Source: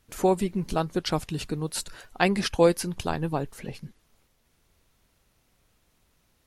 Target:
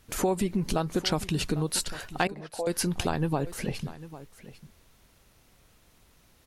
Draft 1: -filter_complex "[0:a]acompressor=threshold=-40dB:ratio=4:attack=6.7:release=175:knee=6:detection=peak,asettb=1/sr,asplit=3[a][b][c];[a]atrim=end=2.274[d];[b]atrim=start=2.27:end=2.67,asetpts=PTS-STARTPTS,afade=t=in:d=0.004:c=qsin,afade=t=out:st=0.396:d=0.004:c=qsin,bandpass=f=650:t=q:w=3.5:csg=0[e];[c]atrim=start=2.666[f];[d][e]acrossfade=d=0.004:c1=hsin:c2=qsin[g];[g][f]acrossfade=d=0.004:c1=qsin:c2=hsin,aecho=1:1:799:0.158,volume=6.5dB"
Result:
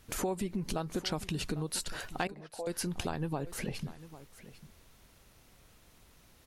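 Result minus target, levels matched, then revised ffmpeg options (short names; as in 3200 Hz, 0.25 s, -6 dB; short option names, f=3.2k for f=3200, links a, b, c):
compressor: peak gain reduction +7.5 dB
-filter_complex "[0:a]acompressor=threshold=-30dB:ratio=4:attack=6.7:release=175:knee=6:detection=peak,asettb=1/sr,asplit=3[a][b][c];[a]atrim=end=2.274[d];[b]atrim=start=2.27:end=2.67,asetpts=PTS-STARTPTS,afade=t=in:d=0.004:c=qsin,afade=t=out:st=0.396:d=0.004:c=qsin,bandpass=f=650:t=q:w=3.5:csg=0[e];[c]atrim=start=2.666[f];[d][e]acrossfade=d=0.004:c1=hsin:c2=qsin[g];[g][f]acrossfade=d=0.004:c1=qsin:c2=hsin,aecho=1:1:799:0.158,volume=6.5dB"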